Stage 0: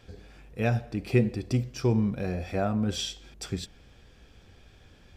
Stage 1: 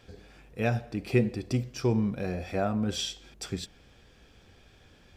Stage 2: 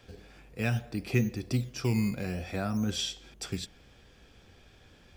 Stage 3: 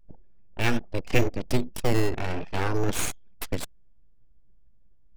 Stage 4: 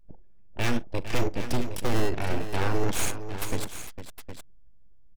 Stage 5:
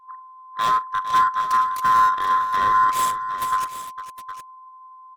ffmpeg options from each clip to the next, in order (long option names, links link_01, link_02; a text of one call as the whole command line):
ffmpeg -i in.wav -af "lowshelf=frequency=120:gain=-5.5" out.wav
ffmpeg -i in.wav -filter_complex "[0:a]acrossover=split=310|950[link_01][link_02][link_03];[link_01]acrusher=samples=13:mix=1:aa=0.000001:lfo=1:lforange=13:lforate=0.6[link_04];[link_02]acompressor=threshold=-41dB:ratio=6[link_05];[link_04][link_05][link_03]amix=inputs=3:normalize=0" out.wav
ffmpeg -i in.wav -af "aeval=exprs='abs(val(0))':channel_layout=same,anlmdn=0.158,volume=8dB" out.wav
ffmpeg -i in.wav -af "asoftclip=type=hard:threshold=-17dB,aecho=1:1:42|455|763:0.112|0.282|0.282" out.wav
ffmpeg -i in.wav -af "afftfilt=real='real(if(lt(b,960),b+48*(1-2*mod(floor(b/48),2)),b),0)':imag='imag(if(lt(b,960),b+48*(1-2*mod(floor(b/48),2)),b),0)':win_size=2048:overlap=0.75" out.wav